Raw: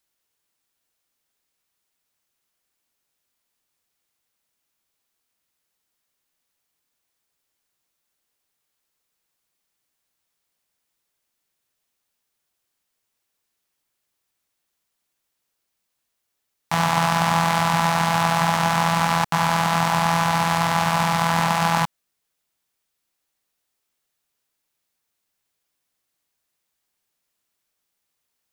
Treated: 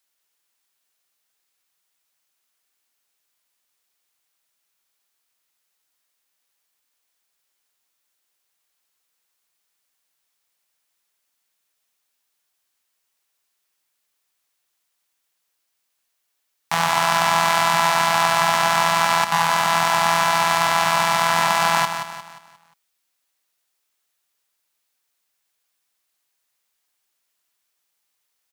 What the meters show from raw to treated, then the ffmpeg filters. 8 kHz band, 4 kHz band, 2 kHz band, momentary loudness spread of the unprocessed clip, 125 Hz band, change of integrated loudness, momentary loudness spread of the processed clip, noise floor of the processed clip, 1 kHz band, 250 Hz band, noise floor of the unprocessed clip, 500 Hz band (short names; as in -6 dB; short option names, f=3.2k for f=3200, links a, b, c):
+4.5 dB, +4.0 dB, +3.5 dB, 1 LU, -9.0 dB, +2.0 dB, 4 LU, -75 dBFS, +2.0 dB, -8.5 dB, -78 dBFS, +2.5 dB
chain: -filter_complex "[0:a]lowshelf=f=420:g=-12,asplit=2[a][b];[b]aecho=0:1:177|354|531|708|885:0.376|0.158|0.0663|0.0278|0.0117[c];[a][c]amix=inputs=2:normalize=0,volume=3dB"